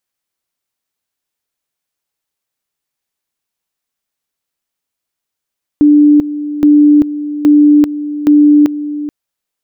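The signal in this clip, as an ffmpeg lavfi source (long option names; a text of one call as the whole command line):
ffmpeg -f lavfi -i "aevalsrc='pow(10,(-3-13.5*gte(mod(t,0.82),0.39))/20)*sin(2*PI*295*t)':duration=3.28:sample_rate=44100" out.wav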